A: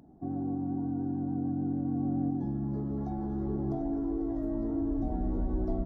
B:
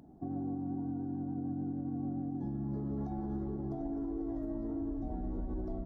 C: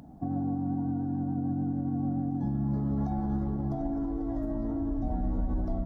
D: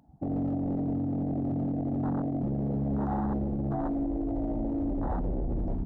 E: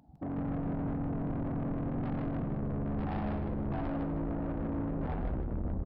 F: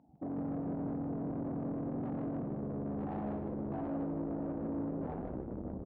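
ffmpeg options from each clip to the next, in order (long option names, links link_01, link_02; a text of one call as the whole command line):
ffmpeg -i in.wav -af "alimiter=level_in=6dB:limit=-24dB:level=0:latency=1:release=139,volume=-6dB" out.wav
ffmpeg -i in.wav -af "equalizer=frequency=380:width_type=o:width=0.47:gain=-13,volume=9dB" out.wav
ffmpeg -i in.wav -af "aeval=exprs='0.0447*(abs(mod(val(0)/0.0447+3,4)-2)-1)':channel_layout=same,equalizer=frequency=860:width_type=o:width=0.39:gain=7,afwtdn=0.0282,volume=2.5dB" out.wav
ffmpeg -i in.wav -filter_complex "[0:a]aresample=11025,asoftclip=type=tanh:threshold=-33.5dB,aresample=44100,asplit=6[link_01][link_02][link_03][link_04][link_05][link_06];[link_02]adelay=155,afreqshift=-120,volume=-3dB[link_07];[link_03]adelay=310,afreqshift=-240,volume=-12.1dB[link_08];[link_04]adelay=465,afreqshift=-360,volume=-21.2dB[link_09];[link_05]adelay=620,afreqshift=-480,volume=-30.4dB[link_10];[link_06]adelay=775,afreqshift=-600,volume=-39.5dB[link_11];[link_01][link_07][link_08][link_09][link_10][link_11]amix=inputs=6:normalize=0" out.wav
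ffmpeg -i in.wav -af "bandpass=frequency=400:width_type=q:width=0.72:csg=0" out.wav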